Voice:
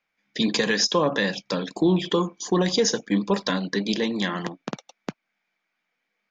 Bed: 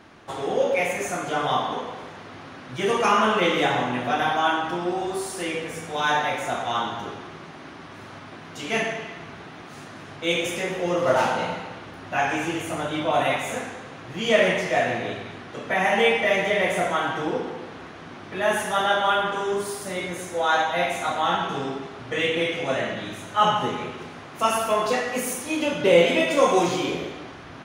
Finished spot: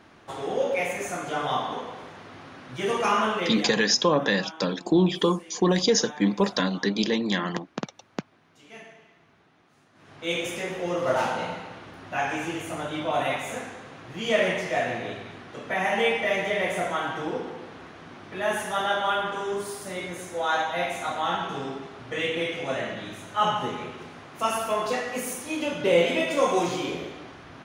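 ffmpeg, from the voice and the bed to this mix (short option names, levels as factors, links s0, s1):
-filter_complex "[0:a]adelay=3100,volume=1[s0];[1:a]volume=4.47,afade=t=out:st=3.19:d=0.61:silence=0.141254,afade=t=in:st=9.93:d=0.41:silence=0.149624[s1];[s0][s1]amix=inputs=2:normalize=0"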